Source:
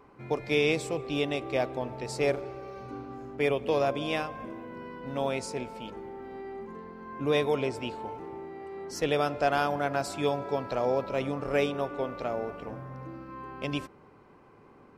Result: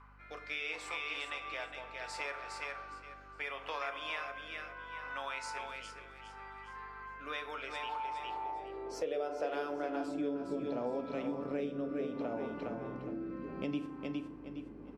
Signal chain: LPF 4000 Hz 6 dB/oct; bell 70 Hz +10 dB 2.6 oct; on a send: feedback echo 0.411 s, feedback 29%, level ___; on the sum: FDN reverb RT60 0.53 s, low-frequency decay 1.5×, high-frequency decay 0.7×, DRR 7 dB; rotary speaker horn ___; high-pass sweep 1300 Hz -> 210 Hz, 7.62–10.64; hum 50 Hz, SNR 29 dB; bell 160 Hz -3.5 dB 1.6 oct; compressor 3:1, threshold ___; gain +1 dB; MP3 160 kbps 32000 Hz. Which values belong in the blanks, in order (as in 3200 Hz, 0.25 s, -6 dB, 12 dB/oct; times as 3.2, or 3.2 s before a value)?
-6 dB, 0.7 Hz, -38 dBFS